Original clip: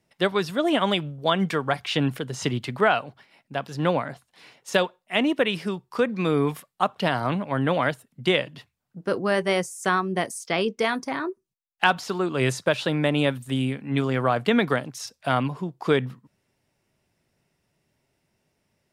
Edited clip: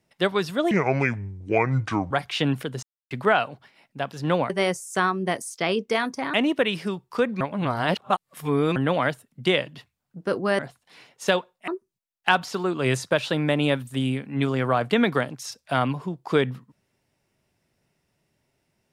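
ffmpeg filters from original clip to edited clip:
-filter_complex "[0:a]asplit=11[s0][s1][s2][s3][s4][s5][s6][s7][s8][s9][s10];[s0]atrim=end=0.714[s11];[s1]atrim=start=0.71:end=1.66,asetpts=PTS-STARTPTS,asetrate=29988,aresample=44100,atrim=end_sample=61610,asetpts=PTS-STARTPTS[s12];[s2]atrim=start=1.656:end=2.38,asetpts=PTS-STARTPTS,afade=t=out:st=0.72:d=0.004:c=hsin[s13];[s3]atrim=start=2.38:end=2.66,asetpts=PTS-STARTPTS,volume=0[s14];[s4]atrim=start=2.66:end=4.052,asetpts=PTS-STARTPTS,afade=t=in:d=0.004:c=hsin[s15];[s5]atrim=start=9.388:end=11.232[s16];[s6]atrim=start=5.138:end=6.212[s17];[s7]atrim=start=6.208:end=7.562,asetpts=PTS-STARTPTS,areverse[s18];[s8]atrim=start=7.558:end=9.392[s19];[s9]atrim=start=4.048:end=5.142[s20];[s10]atrim=start=11.228[s21];[s11][s12]acrossfade=d=0.004:c1=hsin:c2=hsin[s22];[s13][s14][s15]concat=n=3:v=0:a=1[s23];[s22][s23]acrossfade=d=0.004:c1=hsin:c2=hsin[s24];[s24][s16]acrossfade=d=0.004:c1=hsin:c2=hsin[s25];[s25][s17]acrossfade=d=0.004:c1=hsin:c2=hsin[s26];[s26][s18]acrossfade=d=0.004:c1=hsin:c2=hsin[s27];[s27][s19]acrossfade=d=0.004:c1=hsin:c2=hsin[s28];[s28][s20]acrossfade=d=0.004:c1=hsin:c2=hsin[s29];[s29][s21]acrossfade=d=0.004:c1=hsin:c2=hsin"

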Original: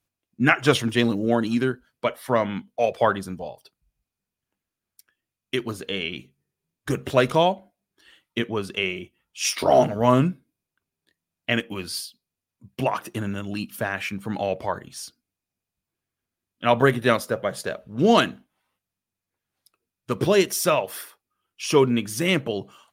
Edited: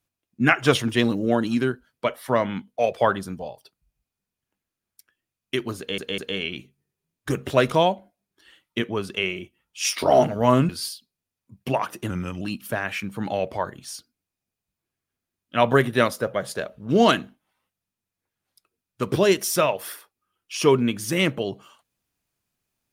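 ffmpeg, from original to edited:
-filter_complex "[0:a]asplit=6[s0][s1][s2][s3][s4][s5];[s0]atrim=end=5.982[s6];[s1]atrim=start=5.778:end=5.982[s7];[s2]atrim=start=5.778:end=10.292[s8];[s3]atrim=start=11.808:end=13.224[s9];[s4]atrim=start=13.22:end=13.5,asetpts=PTS-STARTPTS,asetrate=39690,aresample=44100[s10];[s5]atrim=start=13.496[s11];[s6][s7]acrossfade=d=0.004:c1=hsin:c2=hsin[s12];[s12][s8]acrossfade=d=0.004:c1=hsin:c2=hsin[s13];[s13][s9]acrossfade=d=0.004:c1=hsin:c2=hsin[s14];[s14][s10]acrossfade=d=0.004:c1=hsin:c2=hsin[s15];[s15][s11]acrossfade=d=0.004:c1=hsin:c2=hsin"

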